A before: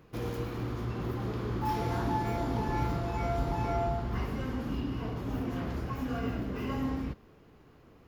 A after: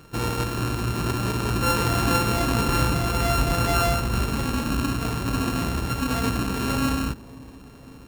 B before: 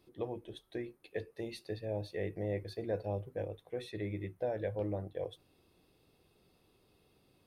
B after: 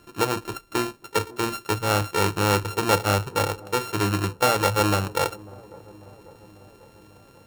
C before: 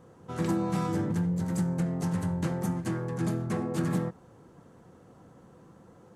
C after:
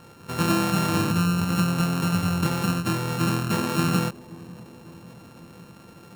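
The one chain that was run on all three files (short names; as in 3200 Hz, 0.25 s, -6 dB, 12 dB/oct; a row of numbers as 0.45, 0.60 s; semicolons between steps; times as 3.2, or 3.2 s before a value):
sample sorter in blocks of 32 samples; dark delay 0.545 s, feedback 65%, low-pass 820 Hz, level -20 dB; match loudness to -24 LUFS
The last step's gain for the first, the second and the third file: +9.0, +15.0, +6.0 dB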